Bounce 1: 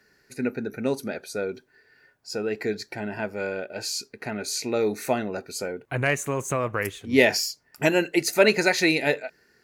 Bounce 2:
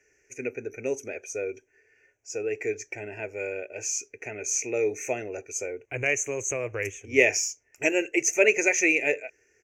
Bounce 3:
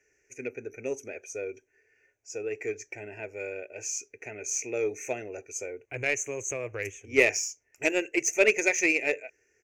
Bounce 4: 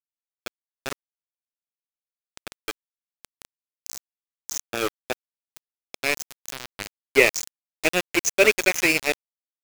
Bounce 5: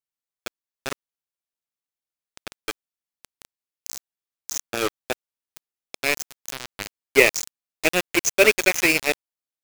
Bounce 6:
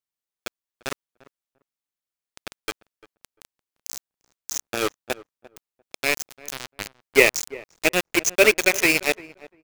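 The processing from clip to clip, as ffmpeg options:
-af "firequalizer=gain_entry='entry(110,0);entry(170,-21);entry(300,-2);entry(430,3);entry(1100,-13);entry(2400,9);entry(4100,-27);entry(6100,13);entry(9500,-11)':delay=0.05:min_phase=1,volume=-3.5dB"
-af "aeval=exprs='0.562*(cos(1*acos(clip(val(0)/0.562,-1,1)))-cos(1*PI/2))+0.00501*(cos(4*acos(clip(val(0)/0.562,-1,1)))-cos(4*PI/2))+0.0158*(cos(5*acos(clip(val(0)/0.562,-1,1)))-cos(5*PI/2))+0.0316*(cos(7*acos(clip(val(0)/0.562,-1,1)))-cos(7*PI/2))':c=same,volume=-1.5dB"
-af "aeval=exprs='val(0)*gte(abs(val(0)),0.0631)':c=same,volume=5dB"
-af "acrusher=bits=3:mode=log:mix=0:aa=0.000001,volume=1dB"
-filter_complex "[0:a]asplit=2[a][b];[b]adelay=346,lowpass=f=1.2k:p=1,volume=-18.5dB,asplit=2[c][d];[d]adelay=346,lowpass=f=1.2k:p=1,volume=0.17[e];[a][c][e]amix=inputs=3:normalize=0"

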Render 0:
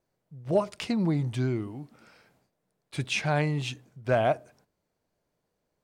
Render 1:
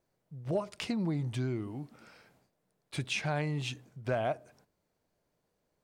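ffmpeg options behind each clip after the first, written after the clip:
-af "acompressor=threshold=-34dB:ratio=2"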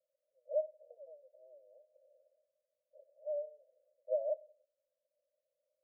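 -af "asuperpass=centerf=570:order=8:qfactor=4.6,volume=1.5dB"

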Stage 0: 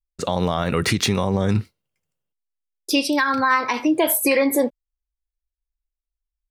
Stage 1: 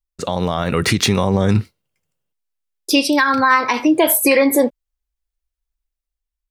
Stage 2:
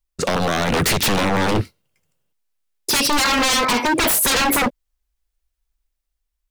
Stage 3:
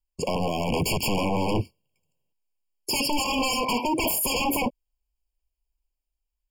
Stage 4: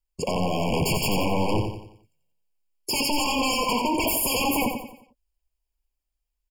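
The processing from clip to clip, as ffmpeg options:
-af "dynaudnorm=f=220:g=7:m=4dB,volume=1dB"
-af "aeval=exprs='0.126*(abs(mod(val(0)/0.126+3,4)-2)-1)':c=same,volume=5.5dB"
-af "afftfilt=real='re*eq(mod(floor(b*sr/1024/1100),2),0)':imag='im*eq(mod(floor(b*sr/1024/1100),2),0)':win_size=1024:overlap=0.75,volume=-5.5dB"
-af "aecho=1:1:89|178|267|356|445:0.501|0.21|0.0884|0.0371|0.0156"

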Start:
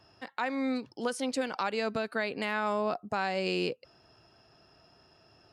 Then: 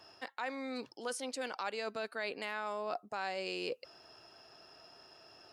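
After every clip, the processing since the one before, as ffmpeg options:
-af "areverse,acompressor=threshold=-38dB:ratio=6,areverse,bass=f=250:g=-13,treble=f=4k:g=3,volume=3.5dB"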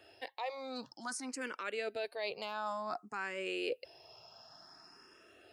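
-filter_complex "[0:a]asplit=2[a][b];[b]afreqshift=0.55[c];[a][c]amix=inputs=2:normalize=1,volume=2.5dB"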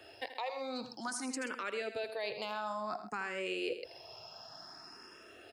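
-filter_complex "[0:a]acrossover=split=160[a][b];[b]acompressor=threshold=-43dB:ratio=2.5[c];[a][c]amix=inputs=2:normalize=0,asplit=2[d][e];[e]aecho=0:1:81|131:0.282|0.188[f];[d][f]amix=inputs=2:normalize=0,volume=5.5dB"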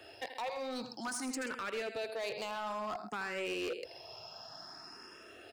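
-af "asoftclip=type=hard:threshold=-35dB,volume=1.5dB"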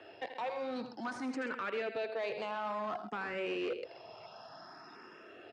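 -filter_complex "[0:a]asplit=2[a][b];[b]acrusher=samples=12:mix=1:aa=0.000001:lfo=1:lforange=19.2:lforate=0.38,volume=-11.5dB[c];[a][c]amix=inputs=2:normalize=0,highpass=140,lowpass=2.9k"

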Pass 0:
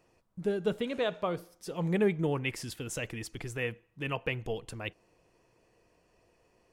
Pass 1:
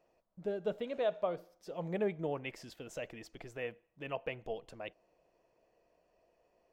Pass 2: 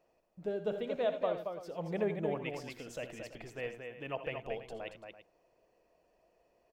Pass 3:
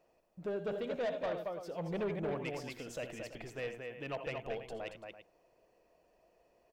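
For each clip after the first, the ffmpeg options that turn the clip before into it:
-af "equalizer=f=100:t=o:w=0.67:g=-10,equalizer=f=630:t=o:w=0.67:g=11,equalizer=f=10k:t=o:w=0.67:g=-12,volume=-9dB"
-af "aecho=1:1:63|80|227|334:0.158|0.237|0.501|0.188"
-af "asoftclip=type=tanh:threshold=-32.5dB,volume=1.5dB"

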